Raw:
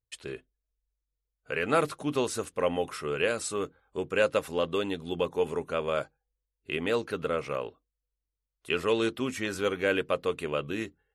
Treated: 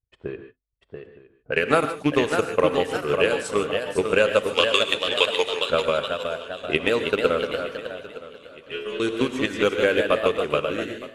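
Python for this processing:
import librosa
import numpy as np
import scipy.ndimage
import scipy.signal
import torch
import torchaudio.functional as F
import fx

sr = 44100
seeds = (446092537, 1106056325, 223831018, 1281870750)

p1 = fx.rattle_buzz(x, sr, strikes_db=-37.0, level_db=-32.0)
p2 = fx.weighting(p1, sr, curve='ITU-R 468', at=(4.53, 5.68))
p3 = fx.env_lowpass(p2, sr, base_hz=420.0, full_db=-27.5)
p4 = fx.level_steps(p3, sr, step_db=15)
p5 = p3 + (p4 * 10.0 ** (-1.0 / 20.0))
p6 = fx.transient(p5, sr, attack_db=8, sustain_db=-7)
p7 = fx.stiff_resonator(p6, sr, f0_hz=68.0, decay_s=0.73, stiffness=0.002, at=(7.51, 9.0))
p8 = fx.echo_pitch(p7, sr, ms=699, semitones=1, count=2, db_per_echo=-6.0)
p9 = fx.echo_feedback(p8, sr, ms=915, feedback_pct=47, wet_db=-18.0)
p10 = fx.rev_gated(p9, sr, seeds[0], gate_ms=170, shape='rising', drr_db=9.0)
y = p10 * 10.0 ** (-1.0 / 20.0)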